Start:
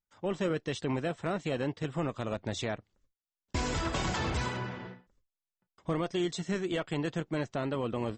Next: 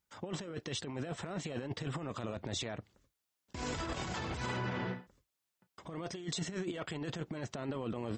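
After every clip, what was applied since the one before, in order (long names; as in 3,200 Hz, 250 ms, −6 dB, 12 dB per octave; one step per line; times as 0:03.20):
high-pass filter 58 Hz
compressor whose output falls as the input rises −37 dBFS, ratio −0.5
brickwall limiter −31 dBFS, peak gain reduction 11 dB
level +3 dB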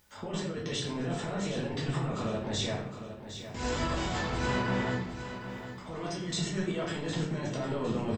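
upward compression, threshold −58 dBFS
repeating echo 760 ms, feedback 36%, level −10.5 dB
rectangular room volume 120 cubic metres, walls mixed, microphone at 1.4 metres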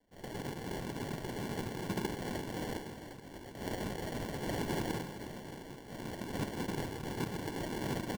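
cochlear-implant simulation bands 3
decimation without filtering 35×
single-tap delay 360 ms −14 dB
level −5.5 dB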